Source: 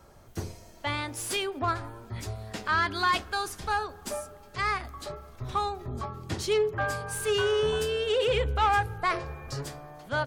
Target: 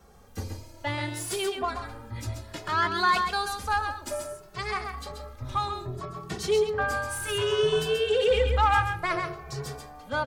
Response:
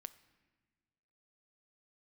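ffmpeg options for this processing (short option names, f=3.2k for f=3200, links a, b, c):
-filter_complex "[0:a]asplit=2[a][b];[1:a]atrim=start_sample=2205,adelay=132[c];[b][c]afir=irnorm=-1:irlink=0,volume=0dB[d];[a][d]amix=inputs=2:normalize=0,asplit=2[e][f];[f]adelay=2.2,afreqshift=0.62[g];[e][g]amix=inputs=2:normalize=1,volume=2.5dB"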